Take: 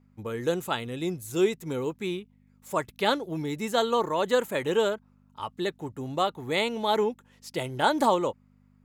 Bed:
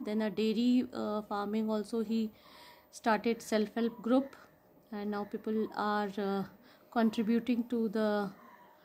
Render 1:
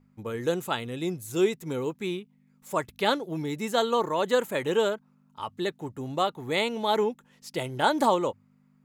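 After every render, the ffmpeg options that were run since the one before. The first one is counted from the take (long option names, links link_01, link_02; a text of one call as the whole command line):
ffmpeg -i in.wav -af "bandreject=frequency=50:width_type=h:width=4,bandreject=frequency=100:width_type=h:width=4" out.wav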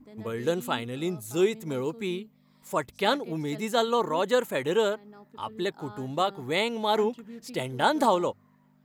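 ffmpeg -i in.wav -i bed.wav -filter_complex "[1:a]volume=-13.5dB[link_01];[0:a][link_01]amix=inputs=2:normalize=0" out.wav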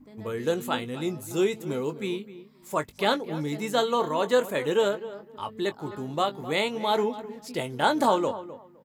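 ffmpeg -i in.wav -filter_complex "[0:a]asplit=2[link_01][link_02];[link_02]adelay=20,volume=-10dB[link_03];[link_01][link_03]amix=inputs=2:normalize=0,asplit=2[link_04][link_05];[link_05]adelay=257,lowpass=frequency=1700:poles=1,volume=-14dB,asplit=2[link_06][link_07];[link_07]adelay=257,lowpass=frequency=1700:poles=1,volume=0.2[link_08];[link_04][link_06][link_08]amix=inputs=3:normalize=0" out.wav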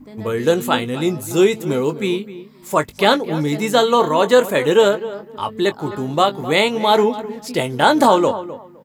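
ffmpeg -i in.wav -af "volume=10.5dB,alimiter=limit=-1dB:level=0:latency=1" out.wav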